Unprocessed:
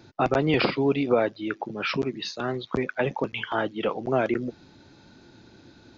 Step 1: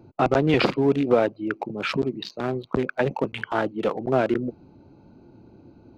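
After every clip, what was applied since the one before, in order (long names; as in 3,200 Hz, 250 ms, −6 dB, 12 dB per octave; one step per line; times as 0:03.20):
adaptive Wiener filter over 25 samples
level +3 dB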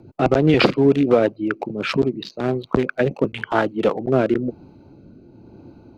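rotating-speaker cabinet horn 6 Hz, later 1 Hz, at 0:01.31
level +6.5 dB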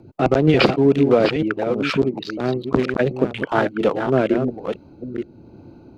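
delay that plays each chunk backwards 476 ms, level −7 dB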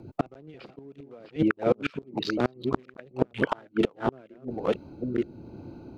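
gate with flip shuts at −10 dBFS, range −32 dB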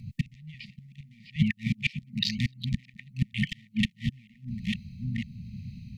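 linear-phase brick-wall band-stop 230–1,800 Hz
level +7 dB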